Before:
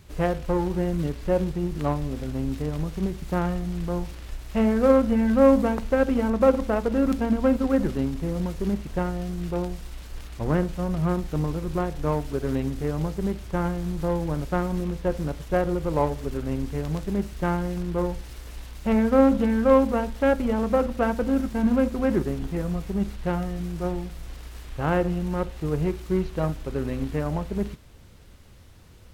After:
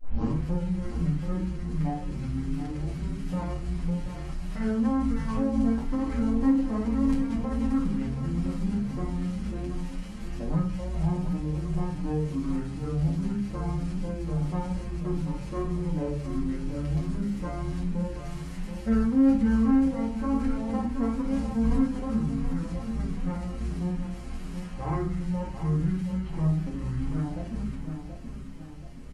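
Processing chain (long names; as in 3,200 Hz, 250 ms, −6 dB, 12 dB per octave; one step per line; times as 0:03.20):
turntable start at the beginning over 0.35 s
dynamic equaliser 630 Hz, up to −8 dB, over −38 dBFS, Q 1.7
formants moved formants −6 semitones
on a send: repeating echo 728 ms, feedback 48%, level −10.5 dB
on the sum: rectangular room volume 300 cubic metres, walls furnished, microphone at 2.1 metres
in parallel at +2 dB: brickwall limiter −21 dBFS, peak gain reduction 19.5 dB
on the sum: notch filter 3,600 Hz, Q 12
barber-pole flanger 7.4 ms +1.5 Hz
level −9 dB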